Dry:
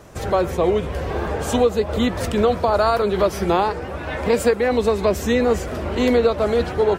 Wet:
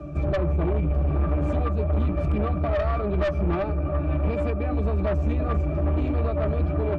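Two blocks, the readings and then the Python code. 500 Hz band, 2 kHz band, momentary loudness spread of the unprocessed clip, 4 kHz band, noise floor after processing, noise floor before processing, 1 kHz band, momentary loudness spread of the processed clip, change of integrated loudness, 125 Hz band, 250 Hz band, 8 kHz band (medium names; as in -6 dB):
-10.0 dB, -10.5 dB, 7 LU, -17.5 dB, -28 dBFS, -30 dBFS, -10.5 dB, 2 LU, -5.0 dB, +5.5 dB, -5.5 dB, under -25 dB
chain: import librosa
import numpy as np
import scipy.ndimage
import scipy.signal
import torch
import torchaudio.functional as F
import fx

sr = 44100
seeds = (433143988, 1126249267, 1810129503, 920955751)

p1 = fx.peak_eq(x, sr, hz=240.0, db=5.5, octaves=1.1)
p2 = fx.octave_resonator(p1, sr, note='D', decay_s=0.14)
p3 = p2 + fx.echo_banded(p2, sr, ms=330, feedback_pct=73, hz=860.0, wet_db=-16.5, dry=0)
p4 = 10.0 ** (-29.0 / 20.0) * np.tanh(p3 / 10.0 ** (-29.0 / 20.0))
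p5 = fx.low_shelf(p4, sr, hz=76.0, db=6.0)
p6 = fx.band_squash(p5, sr, depth_pct=40)
y = p6 * 10.0 ** (8.5 / 20.0)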